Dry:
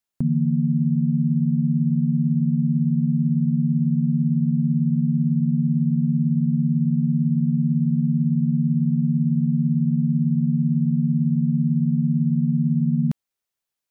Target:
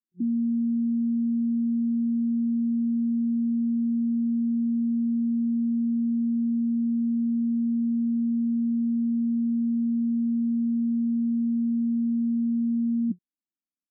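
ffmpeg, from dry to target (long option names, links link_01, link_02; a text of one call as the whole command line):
ffmpeg -i in.wav -af "afftfilt=real='re*between(b*sr/4096,180,360)':imag='im*between(b*sr/4096,180,360)':win_size=4096:overlap=0.75" out.wav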